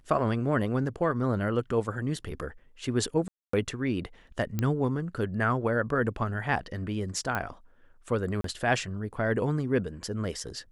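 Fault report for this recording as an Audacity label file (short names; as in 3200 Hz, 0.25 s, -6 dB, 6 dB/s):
3.280000	3.530000	gap 0.254 s
4.590000	4.590000	pop -15 dBFS
7.350000	7.350000	pop -16 dBFS
8.410000	8.440000	gap 33 ms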